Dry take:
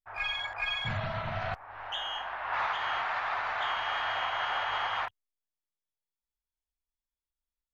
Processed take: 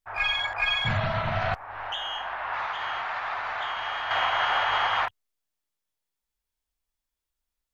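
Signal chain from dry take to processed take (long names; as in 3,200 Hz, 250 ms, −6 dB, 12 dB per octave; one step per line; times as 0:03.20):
0:01.72–0:04.11: downward compressor 3 to 1, threshold −37 dBFS, peak gain reduction 7.5 dB
level +7 dB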